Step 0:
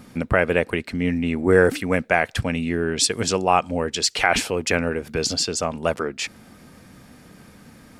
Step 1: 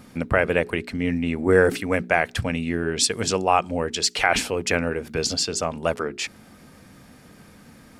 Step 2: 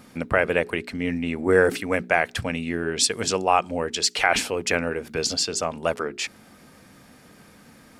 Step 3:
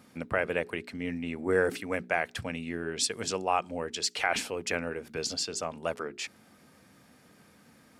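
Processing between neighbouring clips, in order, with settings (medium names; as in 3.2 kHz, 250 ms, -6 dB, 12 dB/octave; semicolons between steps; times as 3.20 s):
hum notches 60/120/180/240/300/360/420 Hz; trim -1 dB
bass shelf 190 Hz -6.5 dB
high-pass 66 Hz; trim -8 dB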